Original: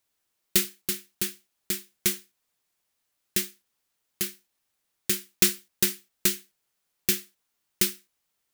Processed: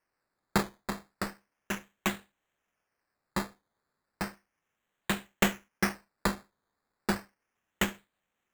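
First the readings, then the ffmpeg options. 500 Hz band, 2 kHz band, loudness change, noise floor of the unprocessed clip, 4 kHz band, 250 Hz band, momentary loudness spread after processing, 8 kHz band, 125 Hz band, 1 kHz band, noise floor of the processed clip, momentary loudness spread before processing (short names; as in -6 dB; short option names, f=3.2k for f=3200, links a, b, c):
+0.5 dB, +1.5 dB, -7.0 dB, -78 dBFS, -8.5 dB, +2.0 dB, 10 LU, -13.5 dB, +3.0 dB, +14.0 dB, -84 dBFS, 9 LU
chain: -af "highpass=f=160:w=0.5412,highpass=f=160:w=1.3066,equalizer=f=210:t=q:w=4:g=5,equalizer=f=340:t=q:w=4:g=-7,equalizer=f=1.7k:t=q:w=4:g=6,equalizer=f=3.6k:t=q:w=4:g=-7,lowpass=f=6.8k:w=0.5412,lowpass=f=6.8k:w=1.3066,acrusher=samples=12:mix=1:aa=0.000001:lfo=1:lforange=7.2:lforate=0.34"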